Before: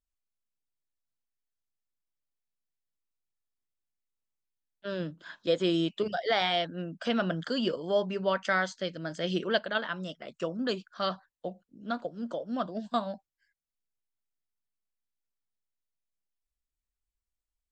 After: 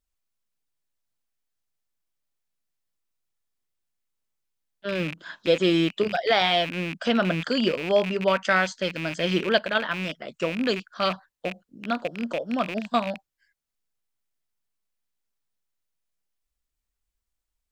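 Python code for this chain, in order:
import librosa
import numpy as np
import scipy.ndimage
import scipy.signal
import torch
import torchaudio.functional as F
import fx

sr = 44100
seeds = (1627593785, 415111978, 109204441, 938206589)

y = fx.rattle_buzz(x, sr, strikes_db=-45.0, level_db=-28.0)
y = y * librosa.db_to_amplitude(6.0)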